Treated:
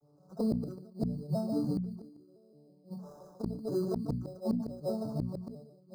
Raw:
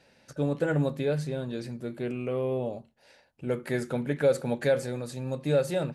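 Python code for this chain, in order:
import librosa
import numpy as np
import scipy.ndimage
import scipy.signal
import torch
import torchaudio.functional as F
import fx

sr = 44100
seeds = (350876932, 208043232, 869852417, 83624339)

y = fx.vocoder_arp(x, sr, chord='major triad', root=50, every_ms=168)
y = fx.recorder_agc(y, sr, target_db=-18.5, rise_db_per_s=21.0, max_gain_db=30)
y = fx.env_flanger(y, sr, rest_ms=7.3, full_db=-20.5)
y = fx.sample_hold(y, sr, seeds[0], rate_hz=4500.0, jitter_pct=0)
y = scipy.signal.sosfilt(scipy.signal.ellip(3, 1.0, 50, [1200.0, 4700.0], 'bandstop', fs=sr, output='sos'), y)
y = fx.high_shelf(y, sr, hz=4900.0, db=-12.0)
y = y + 10.0 ** (-4.0 / 20.0) * np.pad(y, (int(146 * sr / 1000.0), 0))[:len(y)]
y = fx.gate_flip(y, sr, shuts_db=-20.0, range_db=-34)
y = fx.hum_notches(y, sr, base_hz=60, count=4)
y = fx.sustainer(y, sr, db_per_s=66.0)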